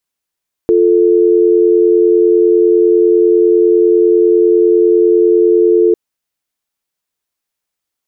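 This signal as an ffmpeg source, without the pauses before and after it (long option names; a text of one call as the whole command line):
ffmpeg -f lavfi -i "aevalsrc='0.355*(sin(2*PI*350*t)+sin(2*PI*440*t))':duration=5.25:sample_rate=44100" out.wav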